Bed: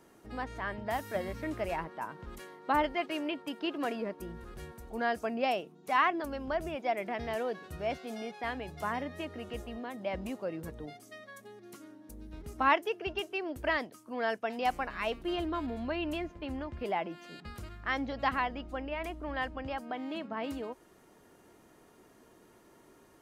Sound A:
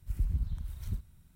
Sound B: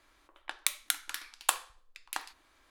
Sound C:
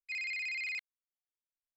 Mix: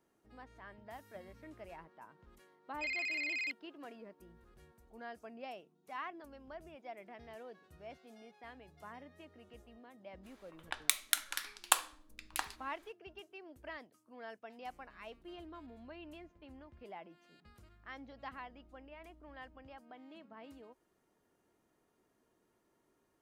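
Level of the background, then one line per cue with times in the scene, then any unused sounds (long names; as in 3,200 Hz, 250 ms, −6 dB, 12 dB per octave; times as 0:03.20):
bed −16.5 dB
0:02.72: mix in C −0.5 dB
0:10.23: mix in B −0.5 dB, fades 0.02 s
not used: A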